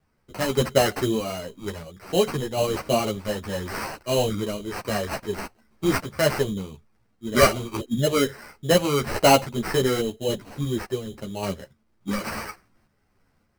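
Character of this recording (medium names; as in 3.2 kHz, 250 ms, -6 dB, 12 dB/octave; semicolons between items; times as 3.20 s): a quantiser's noise floor 12-bit, dither none; random-step tremolo; aliases and images of a low sample rate 3.5 kHz, jitter 0%; a shimmering, thickened sound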